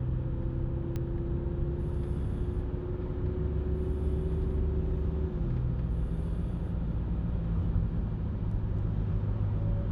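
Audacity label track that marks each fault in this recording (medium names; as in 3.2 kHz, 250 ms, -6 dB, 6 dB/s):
0.960000	0.960000	pop -23 dBFS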